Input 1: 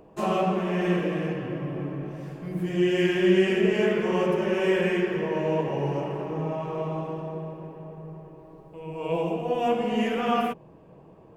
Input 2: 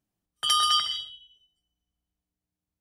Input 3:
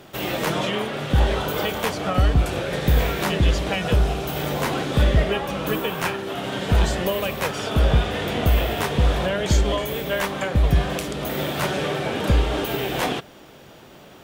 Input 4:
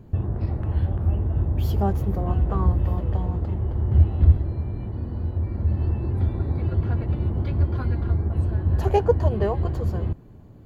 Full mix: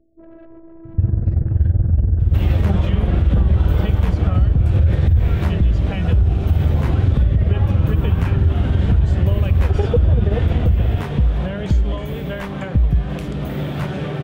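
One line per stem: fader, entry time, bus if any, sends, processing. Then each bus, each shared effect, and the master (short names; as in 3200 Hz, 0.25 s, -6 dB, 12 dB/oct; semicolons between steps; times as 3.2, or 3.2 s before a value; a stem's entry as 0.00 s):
-10.0 dB, 0.00 s, no send, Chebyshev low-pass 630 Hz, order 10; soft clip -29 dBFS, distortion -7 dB; robotiser 328 Hz
off
-3.0 dB, 2.20 s, no send, compressor, threshold -22 dBFS, peak gain reduction 10 dB
-1.0 dB, 0.85 s, no send, AM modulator 21 Hz, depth 65%; thirty-one-band EQ 500 Hz +7 dB, 1000 Hz -10 dB, 1600 Hz +8 dB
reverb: off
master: tone controls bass +14 dB, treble -10 dB; limiter -7 dBFS, peak gain reduction 12.5 dB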